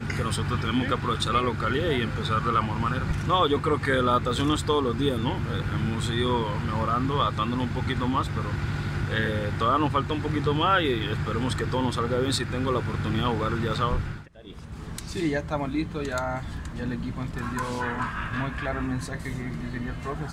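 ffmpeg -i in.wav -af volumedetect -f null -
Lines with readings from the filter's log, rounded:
mean_volume: -26.4 dB
max_volume: -10.1 dB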